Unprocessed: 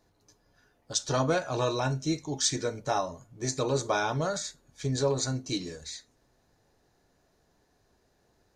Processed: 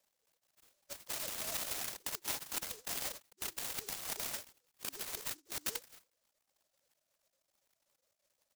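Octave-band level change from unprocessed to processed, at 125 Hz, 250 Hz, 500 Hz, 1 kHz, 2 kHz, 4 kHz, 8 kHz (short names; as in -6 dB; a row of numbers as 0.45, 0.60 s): -27.5, -23.5, -22.0, -17.0, -9.0, -8.0, -7.0 dB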